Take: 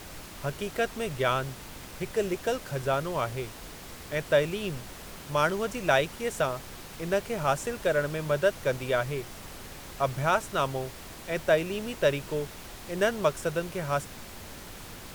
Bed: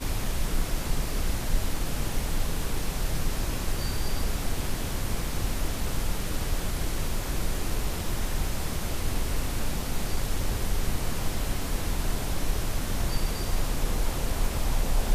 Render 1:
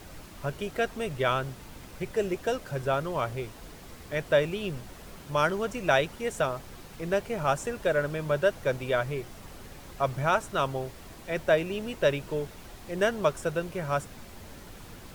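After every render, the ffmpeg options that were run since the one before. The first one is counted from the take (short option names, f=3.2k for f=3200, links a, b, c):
-af "afftdn=nr=6:nf=-44"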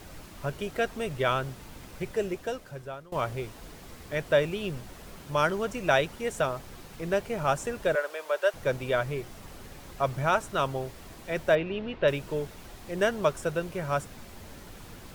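-filter_complex "[0:a]asettb=1/sr,asplit=3[a][b][c];[a]atrim=end=7.954[d];[b]atrim=start=7.95:end=8.54,asetpts=PTS-STARTPTS,afade=t=in:d=0.004:c=qsin,afade=t=out:st=0.586:d=0.004:c=qsin,highpass=f=490:w=0.5412,highpass=f=490:w=1.3066[e];[c]atrim=start=8.536[f];[d][e]acrossfade=d=0.004:c1=hsin:c2=qsin[g];[g][f]acrossfade=d=0.004:c1=qsin:c2=hsin,asettb=1/sr,asplit=3[h][i][j];[h]atrim=end=11.554[k];[i]atrim=start=11.55:end=12.08,asetpts=PTS-STARTPTS,afade=t=in:d=0.004:c=qsin,afade=t=out:st=0.526:d=0.004:c=qsin,lowpass=f=3.7k:w=0.5412,lowpass=f=3.7k:w=1.3066[l];[j]atrim=start=12.076[m];[k][l]acrossfade=d=0.004:c1=hsin:c2=qsin[n];[n][m]acrossfade=d=0.004:c1=qsin:c2=hsin,asplit=2[o][p];[o]atrim=end=3.12,asetpts=PTS-STARTPTS,afade=t=out:st=2.05:d=1.07:silence=0.0794328[q];[p]atrim=start=3.12,asetpts=PTS-STARTPTS,afade=t=in:d=0.004:c=hsin:silence=0.0794328[r];[q][r]concat=n=2:v=0:a=1"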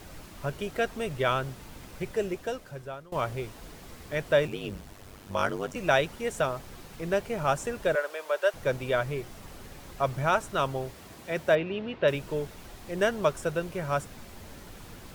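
-filter_complex "[0:a]asettb=1/sr,asplit=3[a][b][c];[a]atrim=end=4.474[d];[b]atrim=start=4.47:end=5.76,asetpts=PTS-STARTPTS,afade=t=in:d=0.004:c=qsin,afade=t=out:st=1.286:d=0.004:c=qsin,aeval=exprs='val(0)*sin(2*PI*49*n/s)':c=same[e];[c]atrim=start=5.756[f];[d][e]acrossfade=d=0.004:c1=hsin:c2=qsin[g];[g][f]acrossfade=d=0.004:c1=qsin:c2=hsin,asettb=1/sr,asplit=3[h][i][j];[h]atrim=end=10.944[k];[i]atrim=start=10.94:end=12.15,asetpts=PTS-STARTPTS,afade=t=in:d=0.004:c=qsin,afade=t=out:st=1.206:d=0.004:c=qsin,highpass=78[l];[j]atrim=start=12.146[m];[k][l]acrossfade=d=0.004:c1=hsin:c2=qsin[n];[n][m]acrossfade=d=0.004:c1=qsin:c2=hsin"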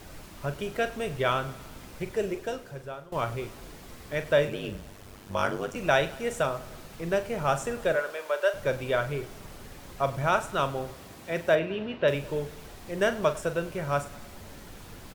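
-filter_complex "[0:a]asplit=2[a][b];[b]adelay=42,volume=-11dB[c];[a][c]amix=inputs=2:normalize=0,aecho=1:1:101|202|303|404|505:0.112|0.0651|0.0377|0.0219|0.0127"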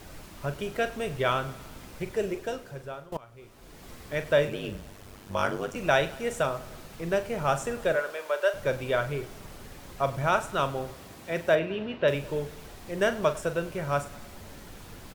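-filter_complex "[0:a]asplit=2[a][b];[a]atrim=end=3.17,asetpts=PTS-STARTPTS,afade=t=out:st=3.166:d=0.004:c=hsin:silence=0.0794328[c];[b]atrim=start=3.17,asetpts=PTS-STARTPTS,afade=t=in:d=0.71:c=qua:silence=0.0794328[d];[c][d]concat=n=2:v=0:a=1"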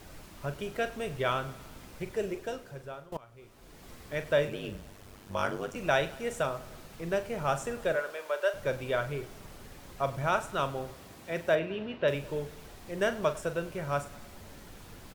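-af "volume=-3.5dB"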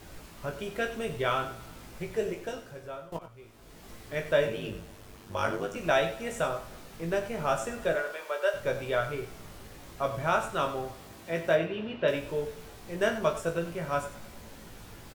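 -filter_complex "[0:a]asplit=2[a][b];[b]adelay=18,volume=-4.5dB[c];[a][c]amix=inputs=2:normalize=0,aecho=1:1:92:0.237"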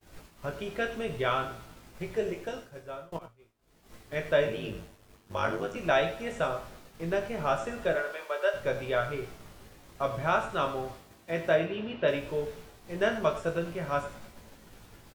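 -filter_complex "[0:a]agate=range=-33dB:threshold=-41dB:ratio=3:detection=peak,acrossover=split=5200[a][b];[b]acompressor=threshold=-57dB:ratio=4:attack=1:release=60[c];[a][c]amix=inputs=2:normalize=0"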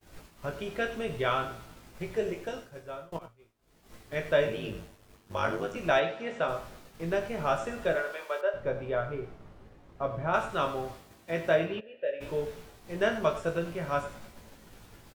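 -filter_complex "[0:a]asplit=3[a][b][c];[a]afade=t=out:st=5.99:d=0.02[d];[b]highpass=180,lowpass=4.4k,afade=t=in:st=5.99:d=0.02,afade=t=out:st=6.47:d=0.02[e];[c]afade=t=in:st=6.47:d=0.02[f];[d][e][f]amix=inputs=3:normalize=0,asettb=1/sr,asplit=3[g][h][i];[g]atrim=end=8.414[j];[h]atrim=start=8.41:end=10.34,asetpts=PTS-STARTPTS,afade=t=in:d=0.004:c=qsin,afade=t=out:st=1.926:d=0.004:c=qsin,lowpass=f=1k:p=1[k];[i]atrim=start=10.336[l];[j][k]acrossfade=d=0.004:c1=hsin:c2=qsin[m];[m][l]acrossfade=d=0.004:c1=qsin:c2=hsin,asplit=3[n][o][p];[n]afade=t=out:st=11.79:d=0.02[q];[o]asplit=3[r][s][t];[r]bandpass=f=530:t=q:w=8,volume=0dB[u];[s]bandpass=f=1.84k:t=q:w=8,volume=-6dB[v];[t]bandpass=f=2.48k:t=q:w=8,volume=-9dB[w];[u][v][w]amix=inputs=3:normalize=0,afade=t=in:st=11.79:d=0.02,afade=t=out:st=12.2:d=0.02[x];[p]afade=t=in:st=12.2:d=0.02[y];[q][x][y]amix=inputs=3:normalize=0"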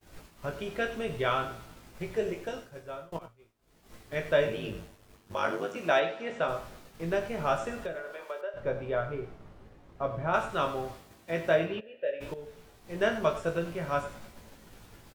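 -filter_complex "[0:a]asettb=1/sr,asplit=3[a][b][c];[a]atrim=end=5.344[d];[b]atrim=start=5.34:end=6.3,asetpts=PTS-STARTPTS,afade=t=in:d=0.004:c=qsin,afade=t=out:st=0.956:d=0.004:c=qsin,highpass=190[e];[c]atrim=start=6.296[f];[d][e]acrossfade=d=0.004:c1=hsin:c2=qsin[g];[g][f]acrossfade=d=0.004:c1=qsin:c2=hsin,asettb=1/sr,asplit=3[h][i][j];[h]atrim=end=7.814[k];[i]atrim=start=7.81:end=8.57,asetpts=PTS-STARTPTS,afade=t=in:d=0.004:c=qsin,afade=t=out:st=0.756:d=0.004:c=qsin,acrossover=split=580|1500[l][m][n];[l]acompressor=threshold=-39dB:ratio=4[o];[m]acompressor=threshold=-43dB:ratio=4[p];[n]acompressor=threshold=-50dB:ratio=4[q];[o][p][q]amix=inputs=3:normalize=0[r];[j]atrim=start=8.566[s];[k][r]acrossfade=d=0.004:c1=hsin:c2=qsin[t];[t][s]acrossfade=d=0.004:c1=qsin:c2=hsin,asplit=2[u][v];[u]atrim=end=12.34,asetpts=PTS-STARTPTS,afade=t=out:st=12.336:d=0.004:c=hsin:silence=0.199526[w];[v]atrim=start=12.34,asetpts=PTS-STARTPTS,afade=t=in:d=0.7:silence=0.199526[x];[w][x]concat=n=2:v=0:a=1"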